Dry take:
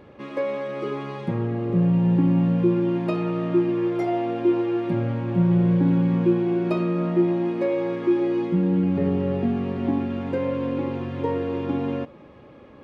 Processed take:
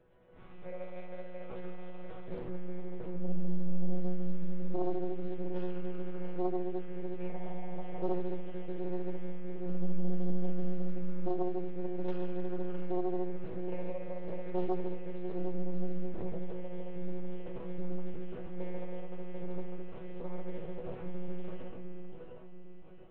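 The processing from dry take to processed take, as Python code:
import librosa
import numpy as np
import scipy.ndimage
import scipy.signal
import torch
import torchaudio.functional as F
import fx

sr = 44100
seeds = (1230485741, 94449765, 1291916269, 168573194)

p1 = fx.vibrato(x, sr, rate_hz=9.3, depth_cents=32.0)
p2 = fx.echo_multitap(p1, sr, ms=(69, 96, 191, 211, 344), db=(-5.0, -17.5, -18.5, -9.0, -11.5))
p3 = fx.stretch_grains(p2, sr, factor=1.8, grain_ms=150.0)
p4 = scipy.signal.sosfilt(scipy.signal.butter(2, 130.0, 'highpass', fs=sr, output='sos'), p3)
p5 = p4 + fx.echo_feedback(p4, sr, ms=692, feedback_pct=51, wet_db=-9.0, dry=0)
p6 = fx.lpc_monotone(p5, sr, seeds[0], pitch_hz=180.0, order=8)
p7 = fx.peak_eq(p6, sr, hz=450.0, db=8.0, octaves=0.2)
p8 = fx.resonator_bank(p7, sr, root=47, chord='sus4', decay_s=0.26)
p9 = fx.doppler_dist(p8, sr, depth_ms=0.9)
y = p9 * 10.0 ** (-2.5 / 20.0)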